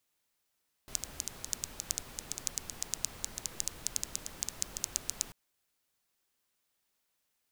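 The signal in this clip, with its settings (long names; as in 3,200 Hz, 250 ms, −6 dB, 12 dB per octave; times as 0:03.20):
rain-like ticks over hiss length 4.44 s, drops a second 8.3, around 6,600 Hz, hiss −8.5 dB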